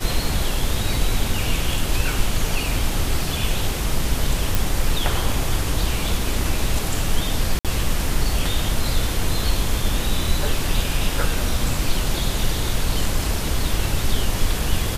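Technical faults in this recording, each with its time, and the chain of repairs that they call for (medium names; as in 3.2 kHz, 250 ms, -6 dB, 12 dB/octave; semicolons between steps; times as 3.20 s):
4.55 s: pop
7.59–7.65 s: dropout 57 ms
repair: de-click; interpolate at 7.59 s, 57 ms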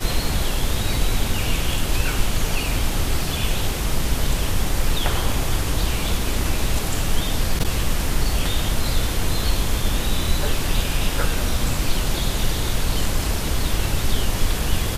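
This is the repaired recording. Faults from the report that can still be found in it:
nothing left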